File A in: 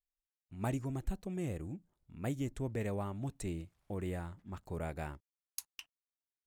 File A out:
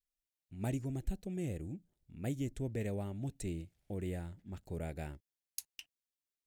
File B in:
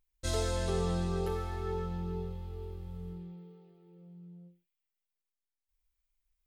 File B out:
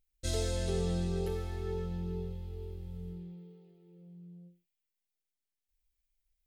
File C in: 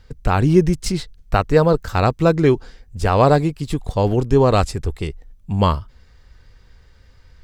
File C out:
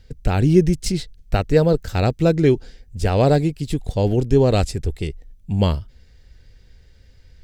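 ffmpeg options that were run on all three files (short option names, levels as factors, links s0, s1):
-af "equalizer=f=1100:t=o:w=0.78:g=-14"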